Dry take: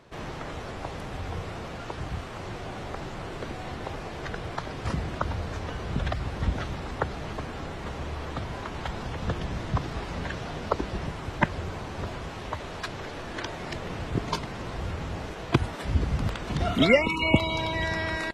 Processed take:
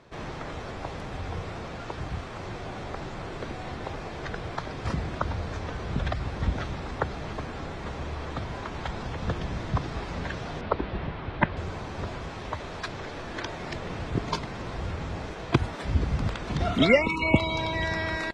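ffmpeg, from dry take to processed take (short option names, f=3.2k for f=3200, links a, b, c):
-filter_complex "[0:a]asettb=1/sr,asplit=3[a][b][c];[a]atrim=end=10.614[d];[b]atrim=start=10.61:end=11.57,asetpts=PTS-STARTPTS,afade=t=in:d=0.004:c=qsin,afade=t=out:st=0.956:d=0.004:c=qsin,lowpass=f=3.8k:w=0.5412,lowpass=f=3.8k:w=1.3066[e];[c]atrim=start=11.566[f];[d][e]acrossfade=d=0.004:c1=hsin:c2=qsin[g];[g][f]acrossfade=d=0.004:c1=qsin:c2=hsin,lowpass=7.7k,bandreject=f=2.9k:w=22"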